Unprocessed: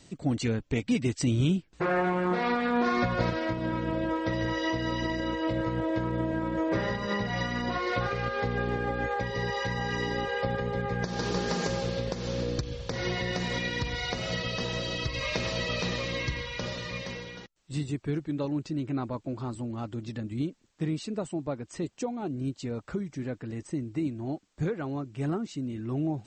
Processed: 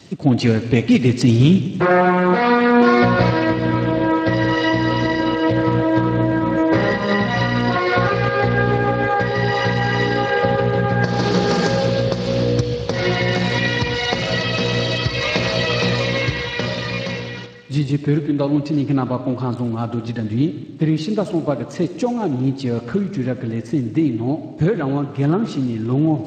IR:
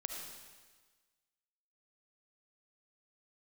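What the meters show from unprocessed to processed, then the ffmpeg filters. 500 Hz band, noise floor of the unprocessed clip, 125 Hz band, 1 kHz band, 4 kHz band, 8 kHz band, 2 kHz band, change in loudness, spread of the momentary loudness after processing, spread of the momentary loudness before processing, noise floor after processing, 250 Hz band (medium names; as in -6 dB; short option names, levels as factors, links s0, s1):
+13.0 dB, -58 dBFS, +13.0 dB, +12.5 dB, +11.0 dB, +6.0 dB, +12.0 dB, +12.5 dB, 8 LU, 8 LU, -32 dBFS, +12.5 dB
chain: -filter_complex "[0:a]asplit=2[s0][s1];[1:a]atrim=start_sample=2205[s2];[s1][s2]afir=irnorm=-1:irlink=0,volume=0.891[s3];[s0][s3]amix=inputs=2:normalize=0,volume=2.37" -ar 32000 -c:a libspeex -b:a 24k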